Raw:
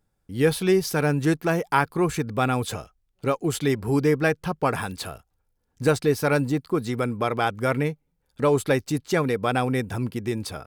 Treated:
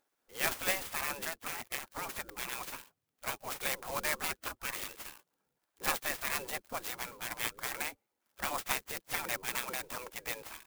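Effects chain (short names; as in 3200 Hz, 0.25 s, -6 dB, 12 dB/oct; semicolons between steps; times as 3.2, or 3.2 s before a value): spectral gate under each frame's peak -20 dB weak; 1.22–2.52 compressor 6:1, threshold -37 dBFS, peak gain reduction 8 dB; clock jitter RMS 0.058 ms; gain +2.5 dB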